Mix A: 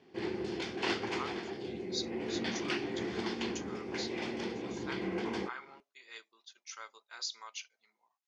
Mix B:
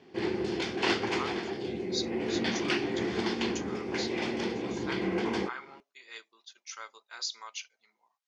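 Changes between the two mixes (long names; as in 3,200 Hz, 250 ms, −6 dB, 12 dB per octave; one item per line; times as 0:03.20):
speech +3.5 dB
background +5.5 dB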